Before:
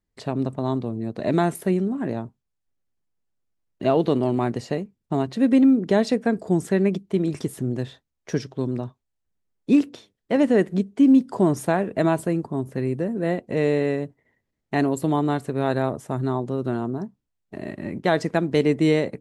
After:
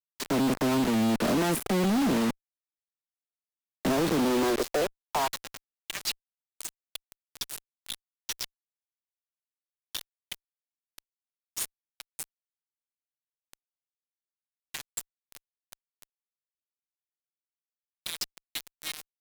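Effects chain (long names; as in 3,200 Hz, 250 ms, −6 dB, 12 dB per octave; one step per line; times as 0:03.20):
gain on one half-wave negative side −12 dB
brickwall limiter −18 dBFS, peak gain reduction 11 dB
downward compressor 8 to 1, threshold −28 dBFS, peak gain reduction 7.5 dB
all-pass dispersion lows, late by 42 ms, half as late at 1,500 Hz
high-pass filter sweep 220 Hz → 3,300 Hz, 0:04.14–0:06.29
log-companded quantiser 2 bits
harmonic generator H 2 −20 dB, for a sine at −24.5 dBFS
level +1.5 dB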